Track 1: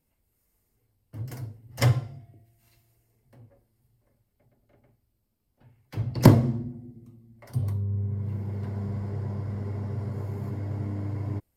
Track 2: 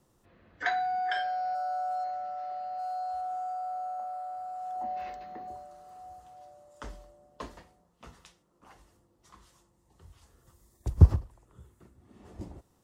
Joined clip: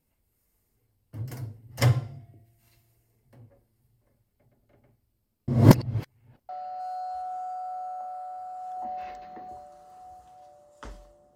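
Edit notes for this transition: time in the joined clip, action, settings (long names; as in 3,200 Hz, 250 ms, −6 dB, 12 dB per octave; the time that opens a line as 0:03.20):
track 1
0:05.48–0:06.49: reverse
0:06.49: continue with track 2 from 0:02.48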